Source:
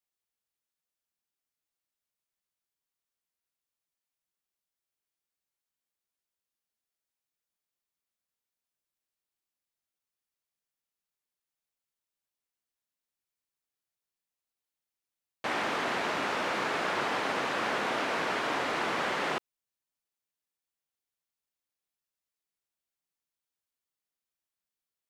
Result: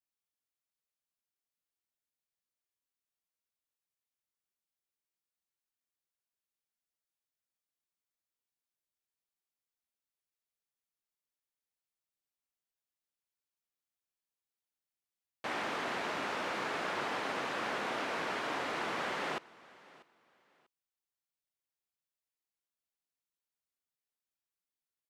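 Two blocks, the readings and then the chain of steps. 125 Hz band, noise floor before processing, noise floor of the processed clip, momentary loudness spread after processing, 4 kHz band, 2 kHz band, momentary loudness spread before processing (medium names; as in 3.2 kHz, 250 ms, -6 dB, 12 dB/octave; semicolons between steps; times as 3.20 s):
-5.5 dB, under -85 dBFS, under -85 dBFS, 2 LU, -5.5 dB, -5.5 dB, 2 LU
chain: feedback delay 642 ms, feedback 24%, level -22 dB; trim -5.5 dB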